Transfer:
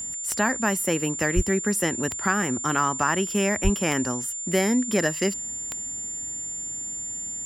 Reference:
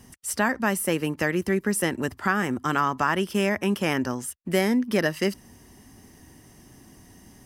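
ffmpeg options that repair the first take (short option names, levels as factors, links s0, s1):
-filter_complex "[0:a]adeclick=t=4,bandreject=f=7200:w=30,asplit=3[s0][s1][s2];[s0]afade=t=out:st=1.35:d=0.02[s3];[s1]highpass=f=140:w=0.5412,highpass=f=140:w=1.3066,afade=t=in:st=1.35:d=0.02,afade=t=out:st=1.47:d=0.02[s4];[s2]afade=t=in:st=1.47:d=0.02[s5];[s3][s4][s5]amix=inputs=3:normalize=0,asplit=3[s6][s7][s8];[s6]afade=t=out:st=3.63:d=0.02[s9];[s7]highpass=f=140:w=0.5412,highpass=f=140:w=1.3066,afade=t=in:st=3.63:d=0.02,afade=t=out:st=3.75:d=0.02[s10];[s8]afade=t=in:st=3.75:d=0.02[s11];[s9][s10][s11]amix=inputs=3:normalize=0"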